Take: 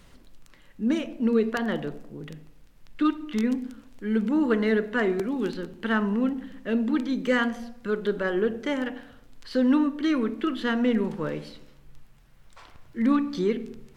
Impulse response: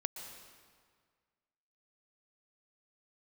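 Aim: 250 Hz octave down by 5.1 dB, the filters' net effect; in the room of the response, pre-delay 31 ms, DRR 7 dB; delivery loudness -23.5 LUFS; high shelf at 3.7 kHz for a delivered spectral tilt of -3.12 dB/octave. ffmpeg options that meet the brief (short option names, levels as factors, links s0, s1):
-filter_complex "[0:a]equalizer=f=250:t=o:g=-6,highshelf=f=3700:g=8.5,asplit=2[s0][s1];[1:a]atrim=start_sample=2205,adelay=31[s2];[s1][s2]afir=irnorm=-1:irlink=0,volume=0.447[s3];[s0][s3]amix=inputs=2:normalize=0,volume=1.68"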